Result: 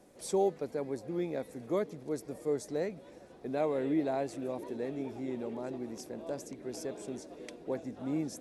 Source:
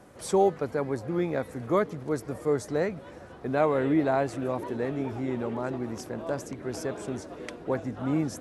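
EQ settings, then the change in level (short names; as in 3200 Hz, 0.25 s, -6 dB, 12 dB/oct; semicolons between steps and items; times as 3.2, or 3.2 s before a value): bell 88 Hz -14.5 dB 1.4 oct; bell 1300 Hz -11.5 dB 1.3 oct; notch 3000 Hz, Q 18; -3.5 dB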